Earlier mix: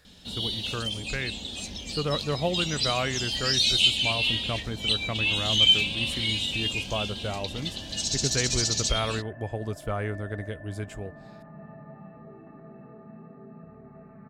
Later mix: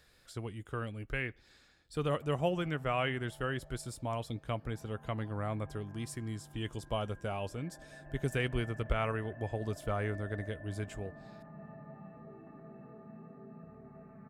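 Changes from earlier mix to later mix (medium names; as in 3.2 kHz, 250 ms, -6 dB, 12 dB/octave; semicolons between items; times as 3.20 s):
speech -4.0 dB; first sound: muted; second sound -4.5 dB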